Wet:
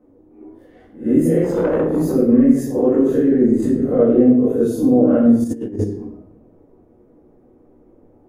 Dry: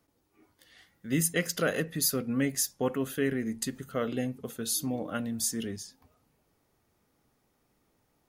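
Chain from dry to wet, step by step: spectral swells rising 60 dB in 0.31 s; EQ curve 170 Hz 0 dB, 350 Hz +12 dB, 4500 Hz -28 dB, 6400 Hz -24 dB; limiter -21.5 dBFS, peak gain reduction 11.5 dB; 2.75–3.51 band shelf 5300 Hz +9 dB 1.3 oct; shoebox room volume 160 m³, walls mixed, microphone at 2 m; 1.44–2.16 tube stage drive 18 dB, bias 0.35; 5.44–5.84 negative-ratio compressor -29 dBFS, ratio -0.5; gain +7 dB

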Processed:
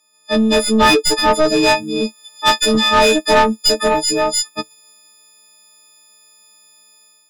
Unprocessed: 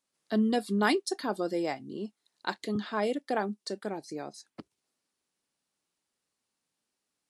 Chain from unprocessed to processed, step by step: frequency quantiser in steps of 6 st; AGC gain up to 7 dB; bell 1600 Hz -13.5 dB 0.23 oct; overdrive pedal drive 22 dB, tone 3100 Hz, clips at -5 dBFS, from 1.63 s tone 5700 Hz; low shelf 95 Hz +11.5 dB; gain +1.5 dB

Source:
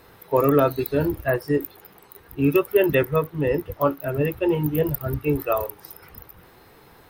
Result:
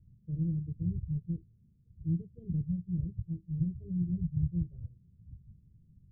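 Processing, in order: inverse Chebyshev low-pass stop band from 630 Hz, stop band 70 dB; varispeed +16%

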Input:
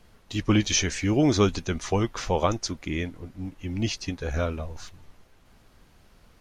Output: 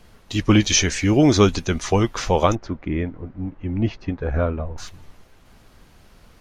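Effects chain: 2.55–4.78 LPF 1500 Hz 12 dB/oct; gain +6 dB

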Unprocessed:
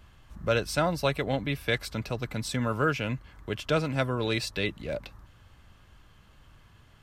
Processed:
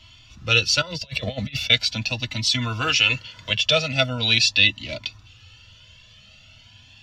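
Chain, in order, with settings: 2.8–3.52 spectral limiter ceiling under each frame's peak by 15 dB; band shelf 4200 Hz +16 dB; 0.81–1.7 negative-ratio compressor -31 dBFS, ratio -0.5; reverb, pre-delay 3 ms, DRR 6.5 dB; cascading flanger rising 0.41 Hz; gain -1 dB

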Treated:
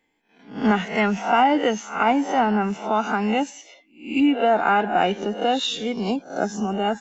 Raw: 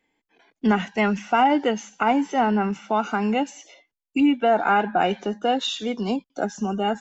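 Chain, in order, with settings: spectral swells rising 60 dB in 0.41 s

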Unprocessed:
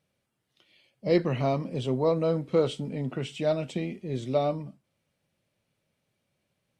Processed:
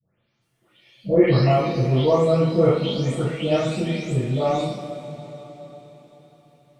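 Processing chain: spectral delay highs late, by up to 0.413 s; two-slope reverb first 0.45 s, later 4.6 s, from -18 dB, DRR -9 dB

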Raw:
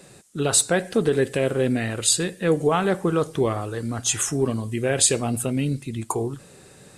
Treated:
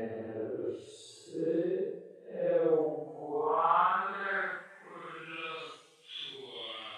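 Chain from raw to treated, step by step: wah 0.36 Hz 390–3100 Hz, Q 3.7; Paulstretch 4.1×, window 0.10 s, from 1.84; dynamic EQ 3500 Hz, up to +5 dB, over -57 dBFS, Q 2.6

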